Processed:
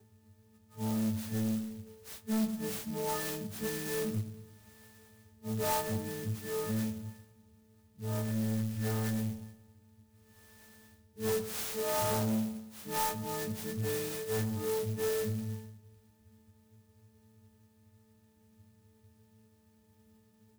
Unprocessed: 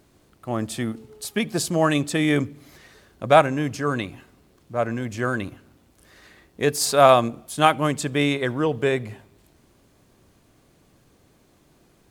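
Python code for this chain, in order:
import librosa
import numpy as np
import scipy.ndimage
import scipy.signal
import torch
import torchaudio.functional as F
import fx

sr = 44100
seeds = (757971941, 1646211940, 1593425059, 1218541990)

y = fx.freq_snap(x, sr, grid_st=6)
y = scipy.signal.sosfilt(scipy.signal.butter(4, 10000.0, 'lowpass', fs=sr, output='sos'), y)
y = fx.high_shelf(y, sr, hz=2600.0, db=7.0)
y = fx.stretch_vocoder_free(y, sr, factor=1.7)
y = fx.highpass(y, sr, hz=99.0, slope=6)
y = fx.bass_treble(y, sr, bass_db=6, treble_db=-2)
y = fx.octave_resonator(y, sr, note='G', decay_s=0.2)
y = 10.0 ** (-36.5 / 20.0) * np.tanh(y / 10.0 ** (-36.5 / 20.0))
y = fx.echo_bbd(y, sr, ms=114, stages=1024, feedback_pct=47, wet_db=-12.0)
y = fx.clock_jitter(y, sr, seeds[0], jitter_ms=0.1)
y = y * librosa.db_to_amplitude(9.0)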